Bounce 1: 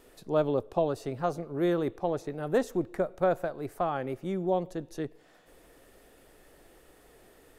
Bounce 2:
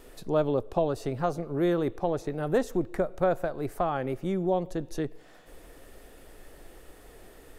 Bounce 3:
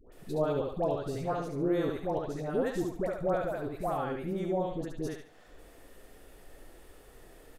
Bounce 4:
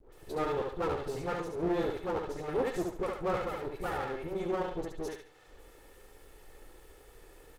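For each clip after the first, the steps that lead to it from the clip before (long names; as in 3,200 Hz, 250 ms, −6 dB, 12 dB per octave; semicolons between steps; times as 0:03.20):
low-shelf EQ 60 Hz +10 dB; in parallel at +1.5 dB: downward compressor, threshold −33 dBFS, peak gain reduction 12.5 dB; on the sum: level −2 dB
all-pass dispersion highs, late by 122 ms, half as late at 960 Hz; on a send: repeating echo 71 ms, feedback 31%, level −4 dB; on the sum: level −5 dB
lower of the sound and its delayed copy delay 2.3 ms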